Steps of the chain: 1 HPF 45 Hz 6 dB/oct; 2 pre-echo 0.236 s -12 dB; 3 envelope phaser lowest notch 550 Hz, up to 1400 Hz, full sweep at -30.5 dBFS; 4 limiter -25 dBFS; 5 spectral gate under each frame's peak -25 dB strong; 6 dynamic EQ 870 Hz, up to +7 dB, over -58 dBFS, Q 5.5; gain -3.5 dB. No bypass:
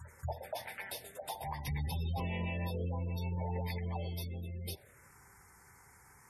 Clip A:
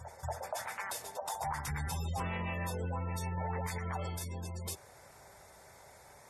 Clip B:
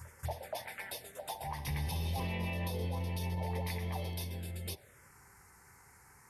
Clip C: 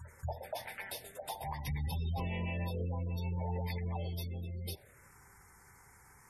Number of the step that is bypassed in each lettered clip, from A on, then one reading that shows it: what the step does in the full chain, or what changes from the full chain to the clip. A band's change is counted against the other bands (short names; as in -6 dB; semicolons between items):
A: 3, 8 kHz band +8.0 dB; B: 5, 8 kHz band +3.0 dB; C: 1, momentary loudness spread change -3 LU